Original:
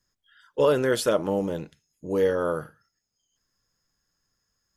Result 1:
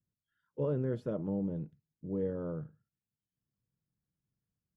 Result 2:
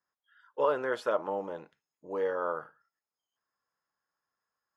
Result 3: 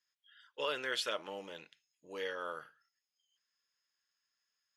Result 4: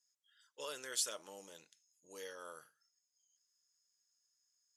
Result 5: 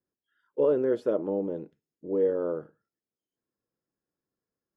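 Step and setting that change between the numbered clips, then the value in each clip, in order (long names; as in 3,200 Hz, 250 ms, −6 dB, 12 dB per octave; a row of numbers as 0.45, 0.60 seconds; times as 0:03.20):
resonant band-pass, frequency: 140, 1,000, 2,800, 7,200, 360 Hertz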